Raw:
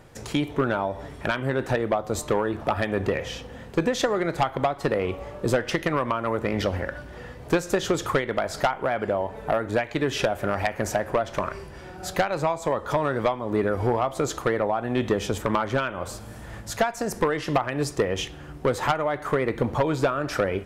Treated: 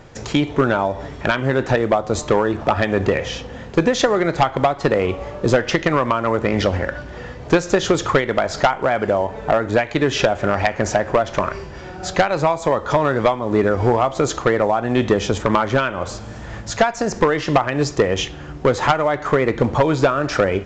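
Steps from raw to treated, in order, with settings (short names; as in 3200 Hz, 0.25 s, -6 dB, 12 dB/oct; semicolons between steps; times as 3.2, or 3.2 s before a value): gain +7 dB; A-law 128 kbps 16000 Hz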